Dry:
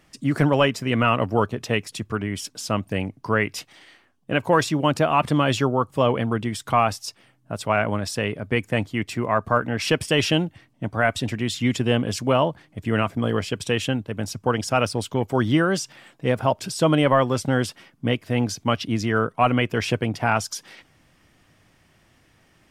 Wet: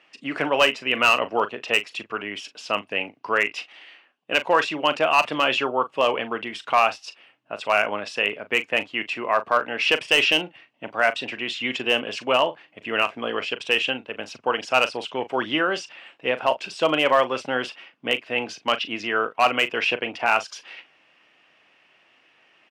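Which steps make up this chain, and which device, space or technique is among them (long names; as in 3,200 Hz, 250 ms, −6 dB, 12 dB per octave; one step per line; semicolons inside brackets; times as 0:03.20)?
megaphone (band-pass filter 470–3,600 Hz; parametric band 2,700 Hz +11 dB 0.37 octaves; hard clipping −10.5 dBFS, distortion −21 dB; double-tracking delay 39 ms −13 dB)
level +1 dB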